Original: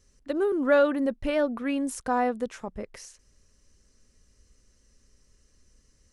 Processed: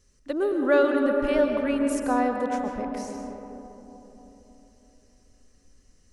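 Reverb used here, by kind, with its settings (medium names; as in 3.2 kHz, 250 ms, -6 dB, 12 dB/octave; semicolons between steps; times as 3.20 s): algorithmic reverb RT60 3.8 s, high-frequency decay 0.25×, pre-delay 90 ms, DRR 2.5 dB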